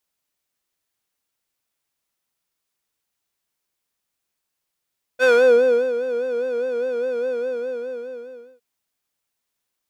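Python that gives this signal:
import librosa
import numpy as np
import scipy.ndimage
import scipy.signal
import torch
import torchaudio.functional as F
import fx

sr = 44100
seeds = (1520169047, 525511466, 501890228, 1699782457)

y = fx.sub_patch_vibrato(sr, seeds[0], note=71, wave='square', wave2='saw', interval_st=0, detune_cents=16, level2_db=-13.5, sub_db=-15, noise_db=-15.0, kind='bandpass', cutoff_hz=340.0, q=0.93, env_oct=2.0, env_decay_s=0.38, env_sustain_pct=20, attack_ms=43.0, decay_s=0.7, sustain_db=-13.5, release_s=1.3, note_s=2.11, lfo_hz=4.9, vibrato_cents=85)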